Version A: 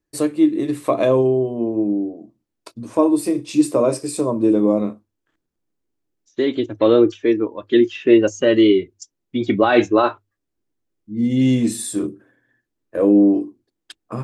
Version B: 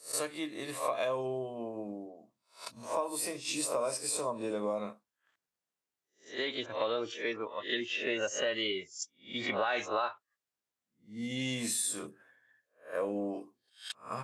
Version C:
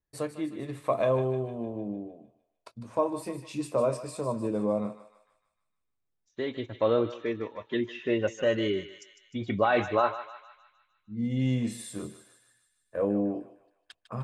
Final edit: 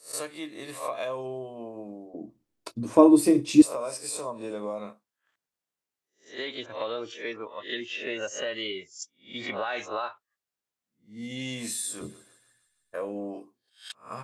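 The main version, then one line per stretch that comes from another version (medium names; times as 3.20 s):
B
2.14–3.62 s: from A
12.01–12.94 s: from C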